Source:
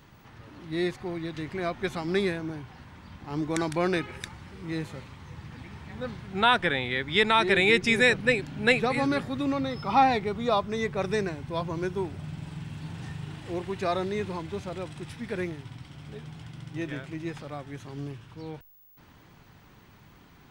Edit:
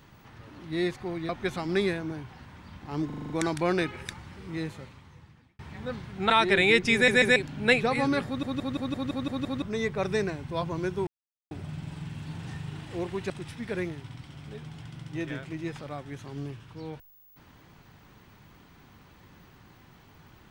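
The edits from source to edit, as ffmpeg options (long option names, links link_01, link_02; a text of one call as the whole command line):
ffmpeg -i in.wav -filter_complex "[0:a]asplit=23[link_01][link_02][link_03][link_04][link_05][link_06][link_07][link_08][link_09][link_10][link_11][link_12][link_13][link_14][link_15][link_16][link_17][link_18][link_19][link_20][link_21][link_22][link_23];[link_01]atrim=end=1.292[link_24];[link_02]atrim=start=1.678:end=3.492[link_25];[link_03]atrim=start=3.448:end=3.492[link_26];[link_04]atrim=start=3.448:end=3.492[link_27];[link_05]atrim=start=3.448:end=3.492[link_28];[link_06]atrim=start=3.448:end=3.492[link_29];[link_07]atrim=start=3.448:end=3.492[link_30];[link_08]atrim=start=3.448:end=5.74,asetpts=PTS-STARTPTS,afade=type=out:start_time=1.182:duration=1.11[link_31];[link_09]atrim=start=5.74:end=6.452,asetpts=PTS-STARTPTS,afade=type=in:duration=0.004:curve=hsin[link_32];[link_10]atrim=start=7.288:end=8.072[link_33];[link_11]atrim=start=7.928:end=8.072[link_34];[link_12]atrim=start=7.928:end=8.072[link_35];[link_13]atrim=start=8.348:end=9.422[link_36];[link_14]atrim=start=9.248:end=9.422[link_37];[link_15]atrim=start=9.248:end=9.422[link_38];[link_16]atrim=start=9.248:end=9.422[link_39];[link_17]atrim=start=9.248:end=9.422[link_40];[link_18]atrim=start=9.248:end=9.422[link_41];[link_19]atrim=start=9.248:end=9.422[link_42];[link_20]atrim=start=9.248:end=9.422[link_43];[link_21]atrim=start=10.608:end=12.06,asetpts=PTS-STARTPTS,afade=type=out:start_time=1.448:duration=0.004:curve=hsin,apad=pad_dur=0.44[link_44];[link_22]atrim=start=12.06:end=13.852,asetpts=PTS-STARTPTS,afade=type=in:duration=0.004:curve=hsin[link_45];[link_23]atrim=start=14.908[link_46];[link_24][link_25]acrossfade=duration=0.004:curve1=hsin:curve2=hsin[link_47];[link_47][link_26]acrossfade=duration=0.004:curve1=hsin:curve2=hsin[link_48];[link_48][link_27]acrossfade=duration=0.004:curve1=hsin:curve2=hsin[link_49];[link_49][link_28]acrossfade=duration=0.004:curve1=hsin:curve2=hsin[link_50];[link_50][link_29]acrossfade=duration=0.004:curve1=hsin:curve2=hsin[link_51];[link_51][link_30]acrossfade=duration=0.004:curve1=hsin:curve2=hsin[link_52];[link_31][link_32]concat=n=2:v=0:a=1[link_53];[link_52][link_53]acrossfade=duration=0.004:curve1=hsin:curve2=hsin[link_54];[link_54][link_33]acrossfade=duration=0.004:curve1=hsin:curve2=hsin[link_55];[link_55][link_34]acrossfade=duration=0.004:curve1=hsin:curve2=hsin[link_56];[link_56][link_35]acrossfade=duration=0.004:curve1=hsin:curve2=hsin[link_57];[link_57][link_36]acrossfade=duration=0.004:curve1=hsin:curve2=hsin[link_58];[link_58][link_37]acrossfade=duration=0.004:curve1=hsin:curve2=hsin[link_59];[link_59][link_38]acrossfade=duration=0.004:curve1=hsin:curve2=hsin[link_60];[link_60][link_39]acrossfade=duration=0.004:curve1=hsin:curve2=hsin[link_61];[link_61][link_40]acrossfade=duration=0.004:curve1=hsin:curve2=hsin[link_62];[link_62][link_41]acrossfade=duration=0.004:curve1=hsin:curve2=hsin[link_63];[link_63][link_42]acrossfade=duration=0.004:curve1=hsin:curve2=hsin[link_64];[link_64][link_43]acrossfade=duration=0.004:curve1=hsin:curve2=hsin[link_65];[link_44][link_45]concat=n=2:v=0:a=1[link_66];[link_65][link_66]acrossfade=duration=0.004:curve1=hsin:curve2=hsin[link_67];[link_67][link_46]acrossfade=duration=0.004:curve1=hsin:curve2=hsin" out.wav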